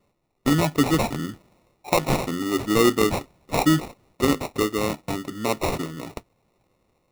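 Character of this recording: aliases and images of a low sample rate 1.6 kHz, jitter 0%

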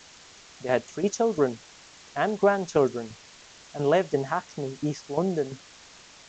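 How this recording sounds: tremolo saw down 2.9 Hz, depth 70%; a quantiser's noise floor 8-bit, dither triangular; G.722

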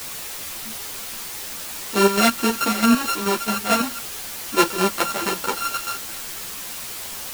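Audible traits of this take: a buzz of ramps at a fixed pitch in blocks of 32 samples; chopped level 4.6 Hz, depth 65%, duty 50%; a quantiser's noise floor 6-bit, dither triangular; a shimmering, thickened sound

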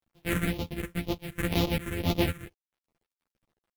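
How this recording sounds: a buzz of ramps at a fixed pitch in blocks of 256 samples; phasing stages 4, 2 Hz, lowest notch 780–1600 Hz; a quantiser's noise floor 12-bit, dither none; a shimmering, thickened sound

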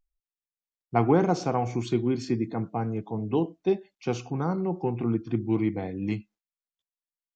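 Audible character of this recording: noise floor -96 dBFS; spectral tilt -6.5 dB/octave

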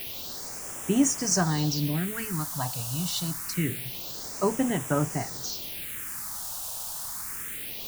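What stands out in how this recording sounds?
a quantiser's noise floor 6-bit, dither triangular; phasing stages 4, 0.26 Hz, lowest notch 340–4200 Hz

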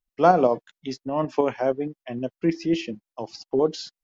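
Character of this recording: tremolo saw up 6.4 Hz, depth 40%

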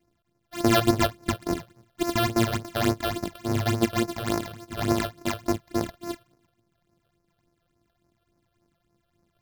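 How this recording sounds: a buzz of ramps at a fixed pitch in blocks of 128 samples; phasing stages 8, 3.5 Hz, lowest notch 260–3300 Hz

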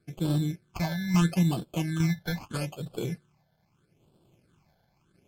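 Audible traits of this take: aliases and images of a low sample rate 1.9 kHz, jitter 0%; random-step tremolo 3.5 Hz; phasing stages 8, 0.78 Hz, lowest notch 340–2000 Hz; MP3

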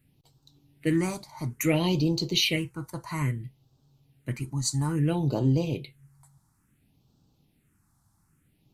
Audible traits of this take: phasing stages 4, 0.59 Hz, lowest notch 430–2000 Hz

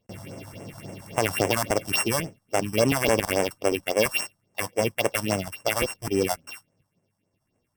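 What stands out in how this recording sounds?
a buzz of ramps at a fixed pitch in blocks of 16 samples; phasing stages 4, 3.6 Hz, lowest notch 390–4100 Hz; MP3

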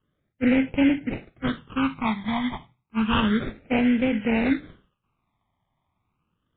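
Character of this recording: aliases and images of a low sample rate 1.8 kHz, jitter 20%; phasing stages 12, 0.31 Hz, lowest notch 460–1200 Hz; MP3

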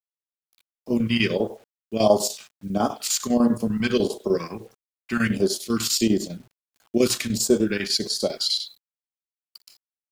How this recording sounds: chopped level 10 Hz, depth 65%, duty 75%; phasing stages 2, 1.5 Hz, lowest notch 480–2300 Hz; a quantiser's noise floor 10-bit, dither none

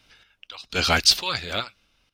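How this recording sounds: random-step tremolo 4.3 Hz, depth 90%

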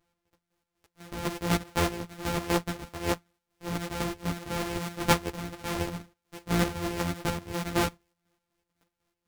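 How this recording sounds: a buzz of ramps at a fixed pitch in blocks of 256 samples; chopped level 4 Hz, depth 60%, duty 50%; a shimmering, thickened sound

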